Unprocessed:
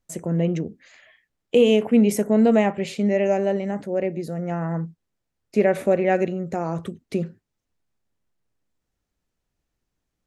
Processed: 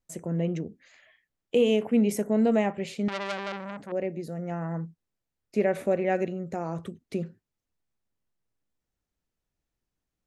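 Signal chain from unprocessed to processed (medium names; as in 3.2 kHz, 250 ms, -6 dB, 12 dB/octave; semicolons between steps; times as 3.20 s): 3.08–3.92 s: transformer saturation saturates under 3 kHz; trim -6 dB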